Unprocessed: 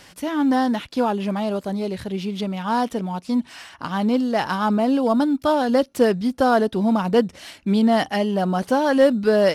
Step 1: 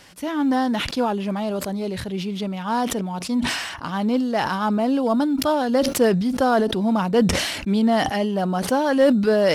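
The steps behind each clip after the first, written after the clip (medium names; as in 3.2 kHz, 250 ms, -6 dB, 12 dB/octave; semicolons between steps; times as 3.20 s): decay stretcher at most 42 dB/s; trim -1.5 dB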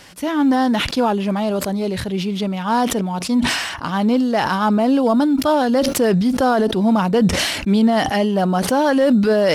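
peak limiter -13 dBFS, peak gain reduction 6.5 dB; trim +5 dB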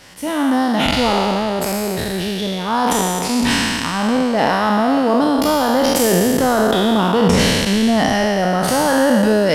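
spectral sustain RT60 2.59 s; trim -2.5 dB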